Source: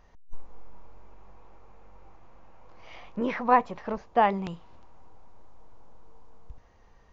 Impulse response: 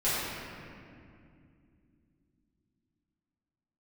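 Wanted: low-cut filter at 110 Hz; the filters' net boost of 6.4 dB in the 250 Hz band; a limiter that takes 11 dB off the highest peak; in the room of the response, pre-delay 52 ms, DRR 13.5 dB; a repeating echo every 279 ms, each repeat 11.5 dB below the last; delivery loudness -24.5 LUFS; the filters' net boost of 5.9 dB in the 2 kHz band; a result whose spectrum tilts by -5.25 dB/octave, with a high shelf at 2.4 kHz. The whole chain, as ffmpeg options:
-filter_complex "[0:a]highpass=110,equalizer=f=250:t=o:g=7.5,equalizer=f=2000:t=o:g=5.5,highshelf=f=2400:g=3,alimiter=limit=0.178:level=0:latency=1,aecho=1:1:279|558|837:0.266|0.0718|0.0194,asplit=2[s0][s1];[1:a]atrim=start_sample=2205,adelay=52[s2];[s1][s2]afir=irnorm=-1:irlink=0,volume=0.0531[s3];[s0][s3]amix=inputs=2:normalize=0,volume=1.58"

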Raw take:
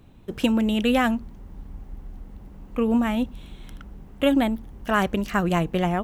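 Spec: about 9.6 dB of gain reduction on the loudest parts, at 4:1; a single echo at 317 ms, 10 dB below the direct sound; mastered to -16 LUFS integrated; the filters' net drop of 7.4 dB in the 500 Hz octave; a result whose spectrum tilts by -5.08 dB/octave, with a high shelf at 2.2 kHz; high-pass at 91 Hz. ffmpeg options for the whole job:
-af "highpass=91,equalizer=f=500:t=o:g=-9,highshelf=f=2200:g=-4.5,acompressor=threshold=0.0316:ratio=4,aecho=1:1:317:0.316,volume=7.94"

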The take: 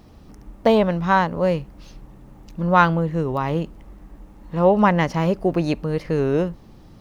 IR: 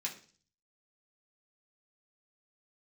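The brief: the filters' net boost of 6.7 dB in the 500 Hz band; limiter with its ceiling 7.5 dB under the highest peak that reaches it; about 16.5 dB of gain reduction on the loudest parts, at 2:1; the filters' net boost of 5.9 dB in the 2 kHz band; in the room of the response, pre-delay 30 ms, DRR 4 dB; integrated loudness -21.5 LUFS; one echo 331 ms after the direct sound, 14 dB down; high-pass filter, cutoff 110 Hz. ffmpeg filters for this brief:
-filter_complex "[0:a]highpass=110,equalizer=f=500:t=o:g=7.5,equalizer=f=2000:t=o:g=7.5,acompressor=threshold=0.0158:ratio=2,alimiter=limit=0.0944:level=0:latency=1,aecho=1:1:331:0.2,asplit=2[s0][s1];[1:a]atrim=start_sample=2205,adelay=30[s2];[s1][s2]afir=irnorm=-1:irlink=0,volume=0.562[s3];[s0][s3]amix=inputs=2:normalize=0,volume=2.82"

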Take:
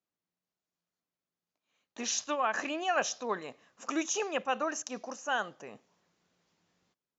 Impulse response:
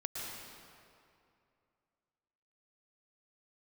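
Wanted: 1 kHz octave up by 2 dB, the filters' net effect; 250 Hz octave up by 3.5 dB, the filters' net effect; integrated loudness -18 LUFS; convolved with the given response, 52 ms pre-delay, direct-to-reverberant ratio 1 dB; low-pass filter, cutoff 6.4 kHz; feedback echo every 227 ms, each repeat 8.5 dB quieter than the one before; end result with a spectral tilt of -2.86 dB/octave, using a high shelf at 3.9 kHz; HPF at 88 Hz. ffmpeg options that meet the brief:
-filter_complex "[0:a]highpass=88,lowpass=6400,equalizer=f=250:t=o:g=4.5,equalizer=f=1000:t=o:g=3,highshelf=f=3900:g=-7,aecho=1:1:227|454|681|908:0.376|0.143|0.0543|0.0206,asplit=2[s0][s1];[1:a]atrim=start_sample=2205,adelay=52[s2];[s1][s2]afir=irnorm=-1:irlink=0,volume=0.75[s3];[s0][s3]amix=inputs=2:normalize=0,volume=3.98"

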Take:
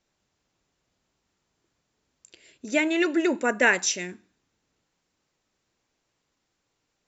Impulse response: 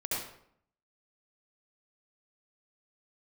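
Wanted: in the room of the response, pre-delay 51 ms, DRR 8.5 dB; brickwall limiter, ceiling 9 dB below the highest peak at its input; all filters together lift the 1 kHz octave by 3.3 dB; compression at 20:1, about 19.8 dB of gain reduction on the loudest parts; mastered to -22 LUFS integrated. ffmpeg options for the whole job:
-filter_complex "[0:a]equalizer=f=1000:t=o:g=4.5,acompressor=threshold=0.0224:ratio=20,alimiter=level_in=2.66:limit=0.0631:level=0:latency=1,volume=0.376,asplit=2[s0][s1];[1:a]atrim=start_sample=2205,adelay=51[s2];[s1][s2]afir=irnorm=-1:irlink=0,volume=0.211[s3];[s0][s3]amix=inputs=2:normalize=0,volume=10"

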